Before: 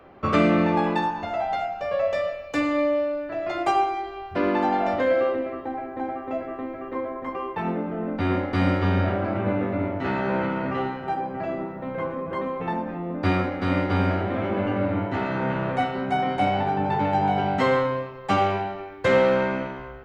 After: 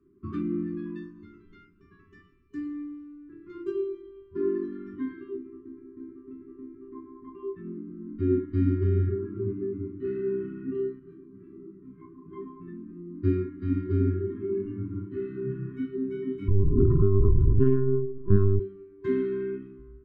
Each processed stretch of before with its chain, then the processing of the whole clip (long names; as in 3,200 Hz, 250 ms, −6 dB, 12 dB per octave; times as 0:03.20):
0:10.99–0:12.26: double-tracking delay 40 ms −10 dB + micro pitch shift up and down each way 46 cents
0:16.48–0:18.60: spectral tilt −4 dB per octave + linear-prediction vocoder at 8 kHz pitch kept + highs frequency-modulated by the lows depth 0.99 ms
whole clip: noise reduction from a noise print of the clip's start 12 dB; drawn EQ curve 120 Hz 0 dB, 430 Hz +5 dB, 780 Hz −14 dB, 7,000 Hz −29 dB; brick-wall band-stop 410–1,000 Hz